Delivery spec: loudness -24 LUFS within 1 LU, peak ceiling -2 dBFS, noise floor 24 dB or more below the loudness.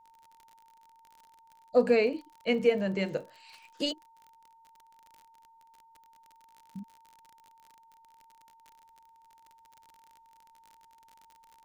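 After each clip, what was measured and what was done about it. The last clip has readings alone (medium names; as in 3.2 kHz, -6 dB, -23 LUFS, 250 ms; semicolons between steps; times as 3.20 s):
tick rate 45 per s; steady tone 910 Hz; tone level -57 dBFS; loudness -29.0 LUFS; peak level -12.0 dBFS; loudness target -24.0 LUFS
-> de-click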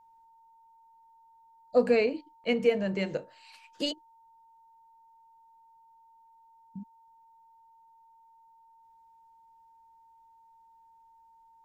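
tick rate 0 per s; steady tone 910 Hz; tone level -57 dBFS
-> band-stop 910 Hz, Q 30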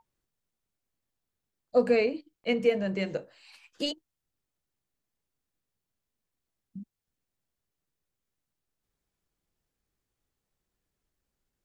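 steady tone not found; loudness -28.5 LUFS; peak level -12.0 dBFS; loudness target -24.0 LUFS
-> trim +4.5 dB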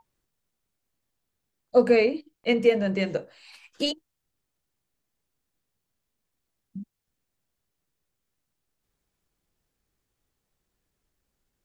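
loudness -24.0 LUFS; peak level -7.5 dBFS; noise floor -82 dBFS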